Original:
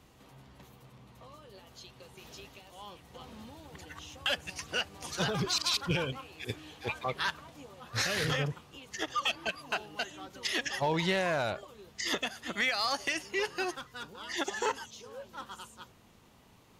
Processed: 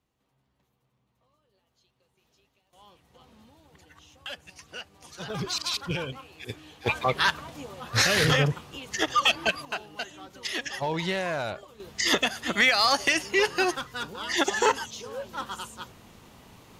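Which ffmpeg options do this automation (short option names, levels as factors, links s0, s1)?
-af "asetnsamples=n=441:p=0,asendcmd='2.73 volume volume -7.5dB;5.3 volume volume 0dB;6.86 volume volume 9dB;9.65 volume volume 0.5dB;11.8 volume volume 9dB',volume=0.112"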